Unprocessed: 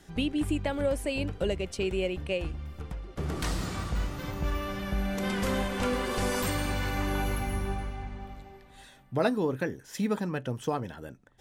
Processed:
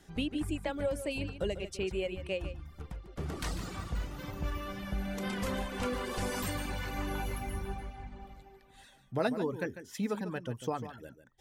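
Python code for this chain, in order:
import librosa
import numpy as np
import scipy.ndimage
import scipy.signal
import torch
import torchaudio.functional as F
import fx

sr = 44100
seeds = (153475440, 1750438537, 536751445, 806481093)

y = fx.dereverb_blind(x, sr, rt60_s=0.74)
y = y + 10.0 ** (-11.5 / 20.0) * np.pad(y, (int(147 * sr / 1000.0), 0))[:len(y)]
y = F.gain(torch.from_numpy(y), -4.0).numpy()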